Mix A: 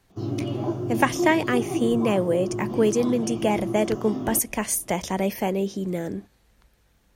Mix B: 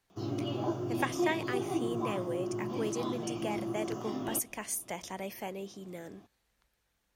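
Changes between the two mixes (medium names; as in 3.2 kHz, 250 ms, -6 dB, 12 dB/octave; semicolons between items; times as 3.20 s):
speech -10.0 dB; master: add bass shelf 490 Hz -9 dB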